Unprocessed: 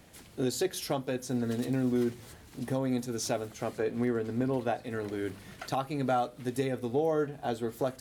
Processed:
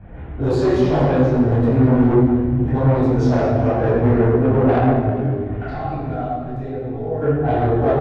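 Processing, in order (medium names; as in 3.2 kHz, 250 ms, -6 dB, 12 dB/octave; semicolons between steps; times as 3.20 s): local Wiener filter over 9 samples; high-pass 42 Hz; tilt EQ -4.5 dB/octave; level-controlled noise filter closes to 2.3 kHz, open at -16.5 dBFS; 4.87–7.22 s: compression 8:1, threshold -35 dBFS, peak gain reduction 17 dB; peaking EQ 170 Hz -10 dB 2.2 oct; reverberation RT60 1.5 s, pre-delay 10 ms, DRR -9.5 dB; saturation -15 dBFS, distortion -12 dB; feedback delay 211 ms, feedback 59%, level -15 dB; detune thickener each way 34 cents; trim +8 dB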